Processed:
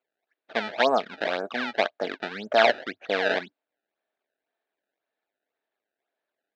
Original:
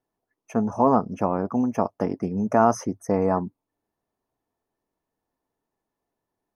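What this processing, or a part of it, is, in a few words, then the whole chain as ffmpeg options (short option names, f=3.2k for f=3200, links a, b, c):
circuit-bent sampling toy: -af "acrusher=samples=23:mix=1:aa=0.000001:lfo=1:lforange=36.8:lforate=1.9,highpass=450,equalizer=f=630:t=q:w=4:g=6,equalizer=f=1k:t=q:w=4:g=-7,equalizer=f=1.6k:t=q:w=4:g=9,equalizer=f=2.3k:t=q:w=4:g=4,equalizer=f=3.8k:t=q:w=4:g=5,lowpass=f=4.2k:w=0.5412,lowpass=f=4.2k:w=1.3066,volume=-2dB"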